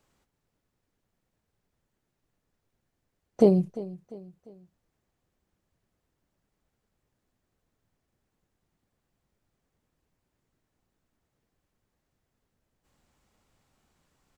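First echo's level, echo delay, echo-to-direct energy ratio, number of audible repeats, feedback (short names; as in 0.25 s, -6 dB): -17.5 dB, 0.348 s, -16.5 dB, 3, 42%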